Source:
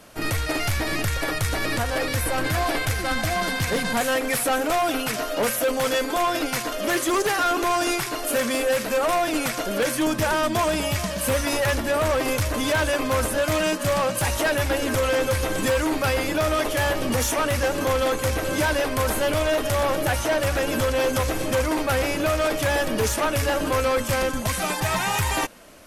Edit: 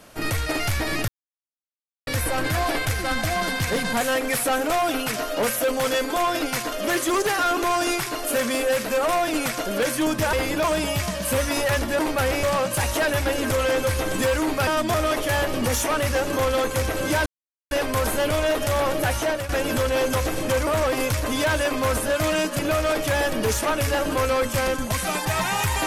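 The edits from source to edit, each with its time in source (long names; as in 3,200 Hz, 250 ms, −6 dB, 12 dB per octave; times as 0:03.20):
0:01.08–0:02.07: silence
0:10.33–0:10.60: swap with 0:16.11–0:16.42
0:11.95–0:13.87: swap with 0:21.70–0:22.14
0:18.74: splice in silence 0.45 s
0:20.19–0:20.52: fade out equal-power, to −12.5 dB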